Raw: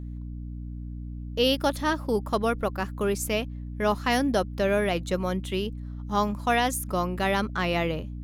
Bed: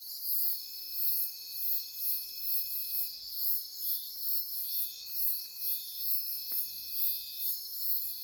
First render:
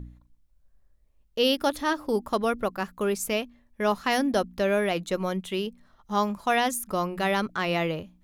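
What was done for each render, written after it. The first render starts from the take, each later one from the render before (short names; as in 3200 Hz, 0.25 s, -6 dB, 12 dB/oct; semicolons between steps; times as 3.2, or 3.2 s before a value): de-hum 60 Hz, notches 5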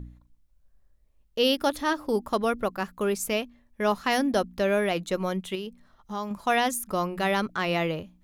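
5.55–6.31 compressor 2:1, threshold -34 dBFS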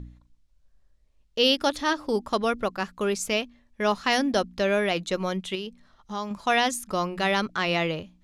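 LPF 5300 Hz 12 dB/oct; high shelf 3600 Hz +11.5 dB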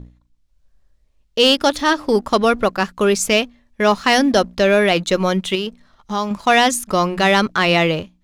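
AGC gain up to 7 dB; sample leveller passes 1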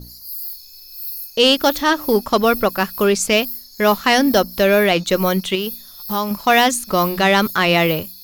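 add bed +1 dB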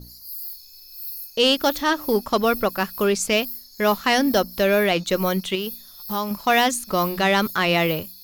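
gain -4.5 dB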